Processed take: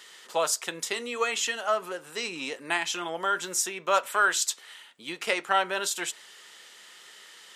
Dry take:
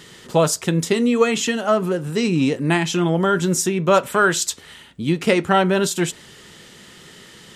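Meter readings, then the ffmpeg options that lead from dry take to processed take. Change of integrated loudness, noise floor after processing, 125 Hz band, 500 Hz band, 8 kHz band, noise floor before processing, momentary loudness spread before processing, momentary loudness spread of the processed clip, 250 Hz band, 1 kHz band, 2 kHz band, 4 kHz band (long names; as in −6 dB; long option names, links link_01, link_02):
−8.5 dB, −51 dBFS, −30.5 dB, −12.5 dB, −4.5 dB, −45 dBFS, 7 LU, 23 LU, −22.5 dB, −6.0 dB, −4.5 dB, −4.5 dB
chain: -af "highpass=760,volume=-4.5dB"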